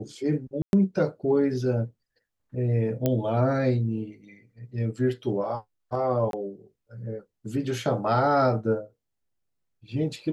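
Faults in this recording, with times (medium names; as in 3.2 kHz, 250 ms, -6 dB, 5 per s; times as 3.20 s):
0.62–0.73 s: dropout 111 ms
3.06 s: pop -11 dBFS
6.31–6.33 s: dropout 22 ms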